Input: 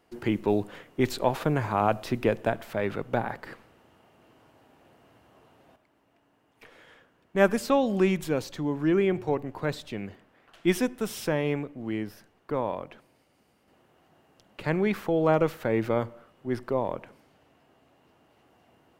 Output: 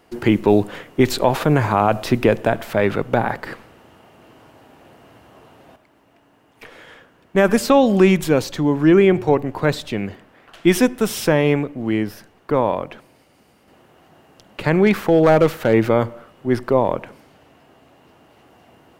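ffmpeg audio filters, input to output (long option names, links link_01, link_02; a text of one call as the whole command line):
ffmpeg -i in.wav -filter_complex "[0:a]asettb=1/sr,asplit=3[link_01][link_02][link_03];[link_01]atrim=end=14.864[link_04];[link_02]atrim=start=14.86:end=15.74,asetpts=PTS-STARTPTS,afade=type=in:duration=0.004:curve=qsin,afade=type=out:start_time=0.876:duration=0.004:curve=qsin,asoftclip=type=hard:threshold=-17.5dB[link_05];[link_03]atrim=start=15.736[link_06];[link_04][link_05]acrossfade=duration=0.004:curve1=hsin:curve2=qsin[link_07];[link_07][link_06]acrossfade=duration=0.004:curve1=qsin:curve2=hsin,alimiter=level_in=13dB:limit=-1dB:release=50:level=0:latency=1,volume=-2dB" out.wav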